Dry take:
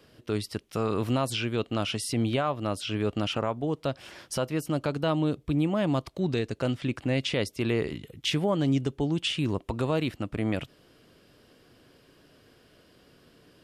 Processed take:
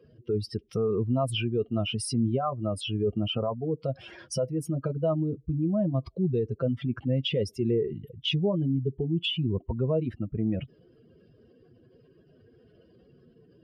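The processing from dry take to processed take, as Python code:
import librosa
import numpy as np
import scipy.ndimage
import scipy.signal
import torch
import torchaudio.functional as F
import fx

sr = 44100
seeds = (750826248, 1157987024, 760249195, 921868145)

y = fx.spec_expand(x, sr, power=2.3)
y = fx.notch_comb(y, sr, f0_hz=290.0)
y = y * 10.0 ** (2.0 / 20.0)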